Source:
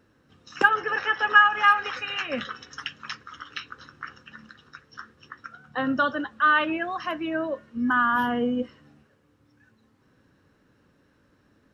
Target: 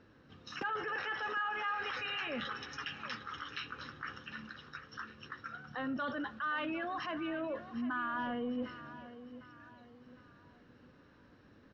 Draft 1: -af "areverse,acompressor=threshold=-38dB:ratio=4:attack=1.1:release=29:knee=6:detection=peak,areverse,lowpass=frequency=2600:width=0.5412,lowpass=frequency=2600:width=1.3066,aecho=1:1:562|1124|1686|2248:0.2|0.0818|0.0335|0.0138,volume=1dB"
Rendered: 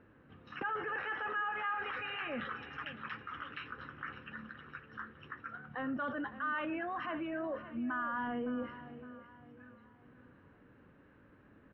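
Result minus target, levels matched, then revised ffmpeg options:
4,000 Hz band −6.0 dB; echo 192 ms early
-af "areverse,acompressor=threshold=-38dB:ratio=4:attack=1.1:release=29:knee=6:detection=peak,areverse,lowpass=frequency=5300:width=0.5412,lowpass=frequency=5300:width=1.3066,aecho=1:1:754|1508|2262|3016:0.2|0.0818|0.0335|0.0138,volume=1dB"

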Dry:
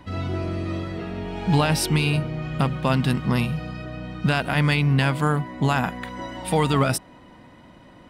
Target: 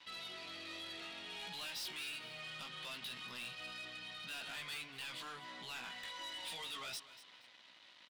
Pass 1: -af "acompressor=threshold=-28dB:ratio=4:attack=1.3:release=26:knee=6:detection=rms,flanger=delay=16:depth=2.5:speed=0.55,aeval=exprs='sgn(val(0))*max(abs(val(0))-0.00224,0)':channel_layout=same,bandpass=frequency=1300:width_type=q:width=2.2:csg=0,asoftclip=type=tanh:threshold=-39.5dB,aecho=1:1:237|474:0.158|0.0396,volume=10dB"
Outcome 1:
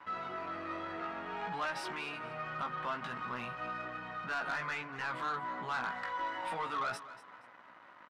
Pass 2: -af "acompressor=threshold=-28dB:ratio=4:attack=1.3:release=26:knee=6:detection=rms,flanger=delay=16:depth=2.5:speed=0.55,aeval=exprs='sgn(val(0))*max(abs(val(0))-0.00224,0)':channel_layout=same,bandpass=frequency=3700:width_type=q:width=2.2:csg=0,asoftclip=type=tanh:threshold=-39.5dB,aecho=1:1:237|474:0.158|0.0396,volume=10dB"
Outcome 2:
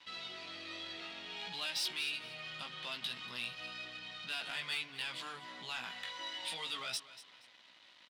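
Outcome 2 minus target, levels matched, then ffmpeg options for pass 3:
soft clipping: distortion −9 dB
-af "acompressor=threshold=-28dB:ratio=4:attack=1.3:release=26:knee=6:detection=rms,flanger=delay=16:depth=2.5:speed=0.55,aeval=exprs='sgn(val(0))*max(abs(val(0))-0.00224,0)':channel_layout=same,bandpass=frequency=3700:width_type=q:width=2.2:csg=0,asoftclip=type=tanh:threshold=-51.5dB,aecho=1:1:237|474:0.158|0.0396,volume=10dB"

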